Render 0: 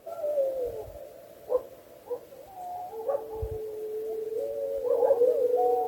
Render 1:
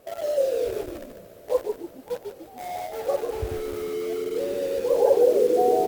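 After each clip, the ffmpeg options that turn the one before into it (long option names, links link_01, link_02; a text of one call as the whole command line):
ffmpeg -i in.wav -filter_complex "[0:a]asplit=2[link_01][link_02];[link_02]acrusher=bits=5:mix=0:aa=0.000001,volume=-5.5dB[link_03];[link_01][link_03]amix=inputs=2:normalize=0,asplit=6[link_04][link_05][link_06][link_07][link_08][link_09];[link_05]adelay=146,afreqshift=-80,volume=-6dB[link_10];[link_06]adelay=292,afreqshift=-160,volume=-14.2dB[link_11];[link_07]adelay=438,afreqshift=-240,volume=-22.4dB[link_12];[link_08]adelay=584,afreqshift=-320,volume=-30.5dB[link_13];[link_09]adelay=730,afreqshift=-400,volume=-38.7dB[link_14];[link_04][link_10][link_11][link_12][link_13][link_14]amix=inputs=6:normalize=0" out.wav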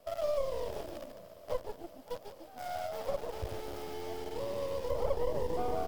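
ffmpeg -i in.wav -filter_complex "[0:a]aeval=exprs='if(lt(val(0),0),0.251*val(0),val(0))':channel_layout=same,acrossover=split=280[link_01][link_02];[link_02]acompressor=threshold=-31dB:ratio=2.5[link_03];[link_01][link_03]amix=inputs=2:normalize=0,equalizer=frequency=400:width_type=o:width=0.33:gain=-7,equalizer=frequency=630:width_type=o:width=0.33:gain=9,equalizer=frequency=3150:width_type=o:width=0.33:gain=5,equalizer=frequency=5000:width_type=o:width=0.33:gain=7,volume=-5.5dB" out.wav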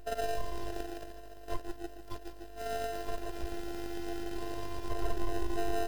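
ffmpeg -i in.wav -filter_complex "[0:a]aeval=exprs='val(0)+0.00316*(sin(2*PI*50*n/s)+sin(2*PI*2*50*n/s)/2+sin(2*PI*3*50*n/s)/3+sin(2*PI*4*50*n/s)/4+sin(2*PI*5*50*n/s)/5)':channel_layout=same,afftfilt=real='hypot(re,im)*cos(PI*b)':imag='0':win_size=512:overlap=0.75,asplit=2[link_01][link_02];[link_02]acrusher=samples=39:mix=1:aa=0.000001,volume=-3.5dB[link_03];[link_01][link_03]amix=inputs=2:normalize=0,volume=2dB" out.wav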